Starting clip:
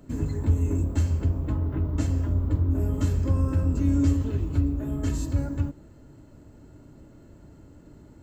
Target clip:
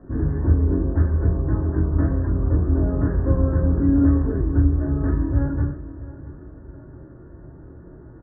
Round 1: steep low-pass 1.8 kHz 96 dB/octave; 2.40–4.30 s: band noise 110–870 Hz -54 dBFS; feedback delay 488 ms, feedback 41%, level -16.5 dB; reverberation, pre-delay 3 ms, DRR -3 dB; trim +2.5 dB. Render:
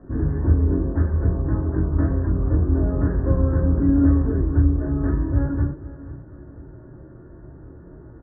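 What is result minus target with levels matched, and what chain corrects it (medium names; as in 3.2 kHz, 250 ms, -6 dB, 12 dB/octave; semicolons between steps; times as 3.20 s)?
echo 175 ms early
steep low-pass 1.8 kHz 96 dB/octave; 2.40–4.30 s: band noise 110–870 Hz -54 dBFS; feedback delay 663 ms, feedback 41%, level -16.5 dB; reverberation, pre-delay 3 ms, DRR -3 dB; trim +2.5 dB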